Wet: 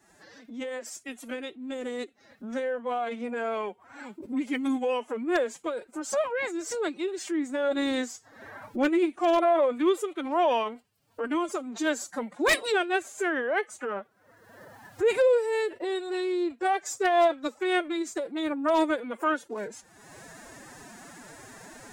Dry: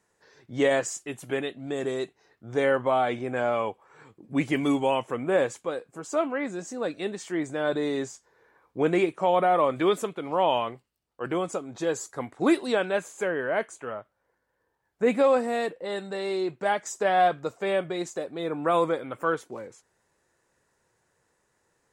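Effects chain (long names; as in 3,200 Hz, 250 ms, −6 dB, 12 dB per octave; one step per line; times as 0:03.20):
fade in at the beginning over 6.78 s
upward compression, threshold −25 dBFS
phase-vocoder pitch shift with formants kept +11 semitones
wave folding −15 dBFS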